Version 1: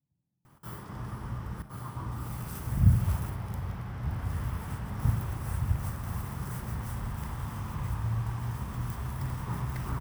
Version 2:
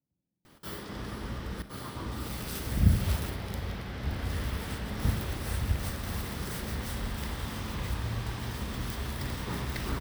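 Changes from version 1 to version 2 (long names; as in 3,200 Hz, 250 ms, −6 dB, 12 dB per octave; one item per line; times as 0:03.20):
background +3.5 dB
master: add octave-band graphic EQ 125/250/500/1,000/2,000/4,000 Hz −10/+3/+5/−7/+3/+11 dB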